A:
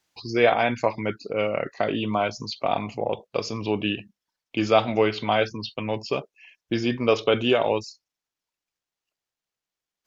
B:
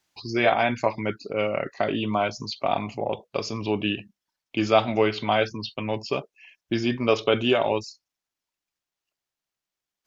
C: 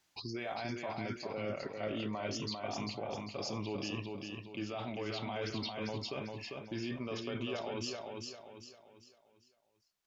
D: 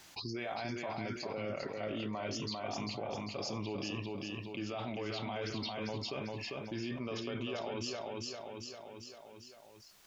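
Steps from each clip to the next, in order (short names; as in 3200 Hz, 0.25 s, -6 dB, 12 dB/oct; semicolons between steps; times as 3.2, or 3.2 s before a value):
notch 480 Hz, Q 12
reverse; compressor 6:1, threshold -30 dBFS, peak gain reduction 16 dB; reverse; limiter -29.5 dBFS, peak gain reduction 12 dB; feedback echo 0.397 s, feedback 39%, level -4 dB; gain -1 dB
fast leveller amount 50%; gain -2 dB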